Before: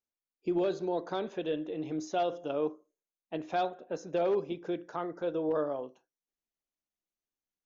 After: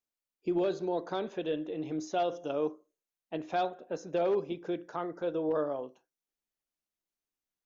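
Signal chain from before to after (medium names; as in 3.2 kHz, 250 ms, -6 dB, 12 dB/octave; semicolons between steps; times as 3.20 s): 2.31–2.71 s: peaking EQ 5.9 kHz +10.5 dB 0.27 oct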